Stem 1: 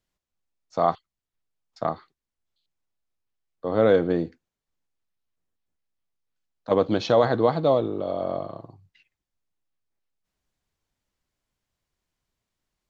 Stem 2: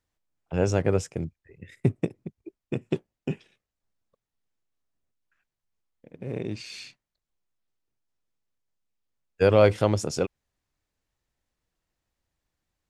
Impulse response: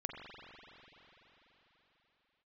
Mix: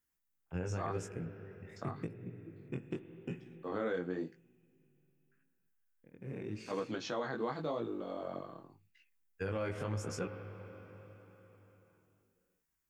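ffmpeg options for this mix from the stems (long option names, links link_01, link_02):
-filter_complex "[0:a]highpass=160,aemphasis=mode=production:type=50fm,volume=-6dB[link_01];[1:a]volume=-9.5dB,asplit=2[link_02][link_03];[link_03]volume=-5dB[link_04];[2:a]atrim=start_sample=2205[link_05];[link_04][link_05]afir=irnorm=-1:irlink=0[link_06];[link_01][link_02][link_06]amix=inputs=3:normalize=0,flanger=delay=16.5:depth=6.1:speed=0.88,equalizer=frequency=630:width_type=o:width=0.67:gain=-7,equalizer=frequency=1600:width_type=o:width=0.67:gain=5,equalizer=frequency=4000:width_type=o:width=0.67:gain=-7,alimiter=level_in=3dB:limit=-24dB:level=0:latency=1:release=155,volume=-3dB"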